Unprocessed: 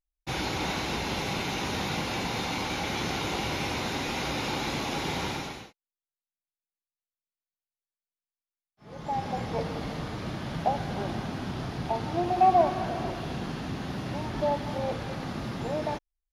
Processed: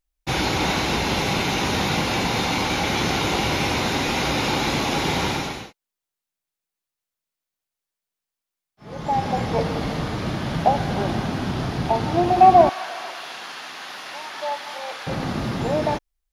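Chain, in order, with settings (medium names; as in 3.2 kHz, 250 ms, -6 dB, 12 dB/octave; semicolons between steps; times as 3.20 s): 12.69–15.07 s: high-pass 1.1 kHz 12 dB/octave; trim +8.5 dB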